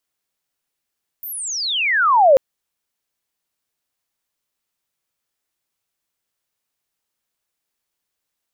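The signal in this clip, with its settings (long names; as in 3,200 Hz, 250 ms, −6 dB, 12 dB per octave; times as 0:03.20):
glide logarithmic 15,000 Hz → 510 Hz −27.5 dBFS → −6.5 dBFS 1.14 s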